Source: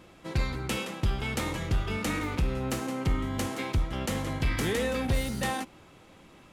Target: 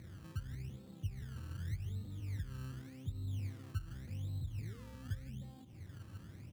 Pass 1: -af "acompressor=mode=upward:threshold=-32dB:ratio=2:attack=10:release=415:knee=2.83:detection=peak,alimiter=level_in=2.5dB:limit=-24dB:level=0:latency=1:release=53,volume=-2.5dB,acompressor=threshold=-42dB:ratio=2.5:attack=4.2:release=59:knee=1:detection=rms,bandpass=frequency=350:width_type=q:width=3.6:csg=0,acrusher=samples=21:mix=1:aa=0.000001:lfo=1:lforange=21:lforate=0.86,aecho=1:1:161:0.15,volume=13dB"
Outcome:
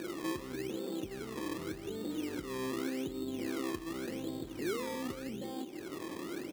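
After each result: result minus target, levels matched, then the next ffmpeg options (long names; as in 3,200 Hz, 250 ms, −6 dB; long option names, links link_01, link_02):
125 Hz band −16.0 dB; downward compressor: peak gain reduction −5 dB
-af "acompressor=mode=upward:threshold=-32dB:ratio=2:attack=10:release=415:knee=2.83:detection=peak,alimiter=level_in=2.5dB:limit=-24dB:level=0:latency=1:release=53,volume=-2.5dB,acompressor=threshold=-42dB:ratio=2.5:attack=4.2:release=59:knee=1:detection=rms,bandpass=frequency=99:width_type=q:width=3.6:csg=0,acrusher=samples=21:mix=1:aa=0.000001:lfo=1:lforange=21:lforate=0.86,aecho=1:1:161:0.15,volume=13dB"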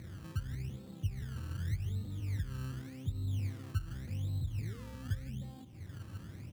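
downward compressor: peak gain reduction −5 dB
-af "acompressor=mode=upward:threshold=-32dB:ratio=2:attack=10:release=415:knee=2.83:detection=peak,alimiter=level_in=2.5dB:limit=-24dB:level=0:latency=1:release=53,volume=-2.5dB,acompressor=threshold=-50dB:ratio=2.5:attack=4.2:release=59:knee=1:detection=rms,bandpass=frequency=99:width_type=q:width=3.6:csg=0,acrusher=samples=21:mix=1:aa=0.000001:lfo=1:lforange=21:lforate=0.86,aecho=1:1:161:0.15,volume=13dB"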